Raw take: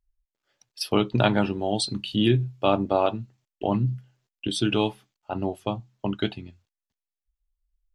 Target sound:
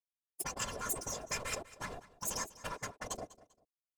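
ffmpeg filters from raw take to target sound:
-af "bass=f=250:g=11,treble=f=4k:g=6,aeval=exprs='sgn(val(0))*max(abs(val(0))-0.0355,0)':c=same,firequalizer=gain_entry='entry(120,0);entry(210,11);entry(590,-14);entry(4300,0);entry(8800,-8)':delay=0.05:min_phase=1,dynaudnorm=f=210:g=3:m=4.5dB,asetrate=88200,aresample=44100,afftfilt=real='hypot(re,im)*cos(PI*b)':imag='0':win_size=512:overlap=0.75,acompressor=threshold=-18dB:ratio=6,afftfilt=real='re*lt(hypot(re,im),0.0562)':imag='im*lt(hypot(re,im),0.0562)':win_size=1024:overlap=0.75,afftfilt=real='hypot(re,im)*cos(2*PI*random(0))':imag='hypot(re,im)*sin(2*PI*random(1))':win_size=512:overlap=0.75,aecho=1:1:197|394:0.126|0.0352,volume=11.5dB"

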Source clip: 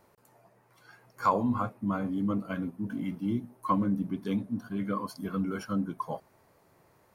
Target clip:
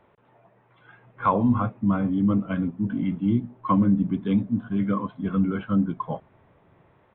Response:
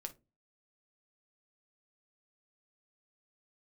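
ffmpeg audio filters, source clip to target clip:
-filter_complex "[0:a]acrossover=split=240[a][b];[a]dynaudnorm=f=610:g=3:m=7dB[c];[c][b]amix=inputs=2:normalize=0,aresample=8000,aresample=44100,volume=3.5dB"

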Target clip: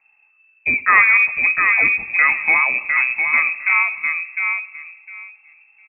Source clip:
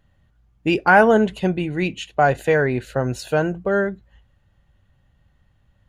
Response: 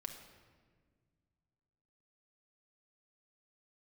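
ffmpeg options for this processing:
-filter_complex "[0:a]acontrast=35,asplit=2[a][b];[b]adelay=706,lowpass=f=1.1k:p=1,volume=-3dB,asplit=2[c][d];[d]adelay=706,lowpass=f=1.1k:p=1,volume=0.2,asplit=2[e][f];[f]adelay=706,lowpass=f=1.1k:p=1,volume=0.2[g];[a][c][e][g]amix=inputs=4:normalize=0,asplit=2[h][i];[1:a]atrim=start_sample=2205[j];[i][j]afir=irnorm=-1:irlink=0,volume=-6dB[k];[h][k]amix=inputs=2:normalize=0,lowpass=f=2.3k:t=q:w=0.5098,lowpass=f=2.3k:t=q:w=0.6013,lowpass=f=2.3k:t=q:w=0.9,lowpass=f=2.3k:t=q:w=2.563,afreqshift=-2700,volume=-6dB"

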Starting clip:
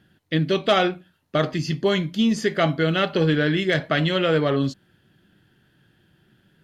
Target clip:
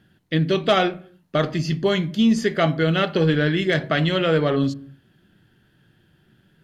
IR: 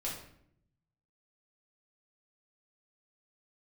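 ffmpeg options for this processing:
-filter_complex "[0:a]asplit=2[a][b];[b]lowshelf=f=340:g=9[c];[1:a]atrim=start_sample=2205,afade=t=out:st=0.36:d=0.01,atrim=end_sample=16317,lowpass=2.6k[d];[c][d]afir=irnorm=-1:irlink=0,volume=-19dB[e];[a][e]amix=inputs=2:normalize=0"

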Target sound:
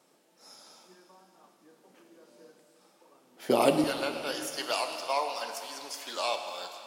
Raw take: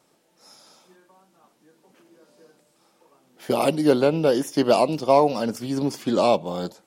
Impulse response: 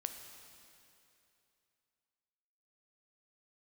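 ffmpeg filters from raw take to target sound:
-filter_complex "[0:a]asetnsamples=n=441:p=0,asendcmd='3.84 highpass f 1300',highpass=180[a];[1:a]atrim=start_sample=2205[b];[a][b]afir=irnorm=-1:irlink=0"

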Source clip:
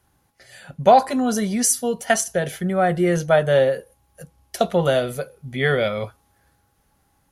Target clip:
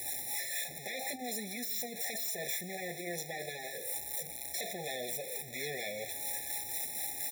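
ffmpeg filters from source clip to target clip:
-filter_complex "[0:a]aeval=exprs='val(0)+0.5*0.075*sgn(val(0))':c=same,acrossover=split=430[a][b];[a]aeval=exprs='val(0)*(1-0.5/2+0.5/2*cos(2*PI*4.2*n/s))':c=same[c];[b]aeval=exprs='val(0)*(1-0.5/2-0.5/2*cos(2*PI*4.2*n/s))':c=same[d];[c][d]amix=inputs=2:normalize=0,asoftclip=type=hard:threshold=-17dB,aderivative,afftfilt=real='re*lt(hypot(re,im),0.0562)':imag='im*lt(hypot(re,im),0.0562)':win_size=1024:overlap=0.75,highshelf=f=2k:g=-10.5,aecho=1:1:333:0.158,afftfilt=real='re*eq(mod(floor(b*sr/1024/850),2),0)':imag='im*eq(mod(floor(b*sr/1024/850),2),0)':win_size=1024:overlap=0.75,volume=8dB"

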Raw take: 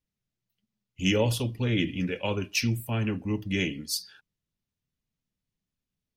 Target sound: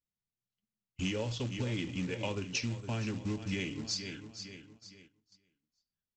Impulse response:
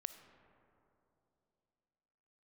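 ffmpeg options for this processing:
-af "aecho=1:1:461|922|1383|1844:0.2|0.0778|0.0303|0.0118,agate=range=-11dB:threshold=-58dB:ratio=16:detection=peak,aresample=16000,acrusher=bits=4:mode=log:mix=0:aa=0.000001,aresample=44100,acompressor=threshold=-32dB:ratio=6"

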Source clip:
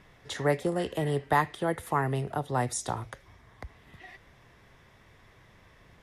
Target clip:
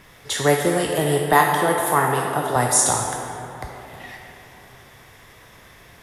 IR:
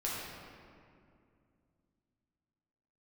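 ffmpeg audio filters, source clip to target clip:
-filter_complex "[0:a]asettb=1/sr,asplit=3[a][b][c];[a]atrim=end=1.334[d];[b]atrim=start=1.33:end=2.56,asetpts=PTS-STARTPTS,afade=t=in:d=0.004:c=qsin,afade=t=out:st=1.226:d=0.004:c=qsin,highpass=140[e];[c]atrim=start=2.556[f];[d][e]acrossfade=d=0.004:c1=hsin:c2=qsin[g];[g][f]acrossfade=d=0.004:c1=qsin:c2=hsin,asplit=2[h][i];[i]aemphasis=mode=production:type=riaa[j];[1:a]atrim=start_sample=2205,asetrate=27783,aresample=44100[k];[j][k]afir=irnorm=-1:irlink=0,volume=-5dB[l];[h][l]amix=inputs=2:normalize=0,volume=5dB"

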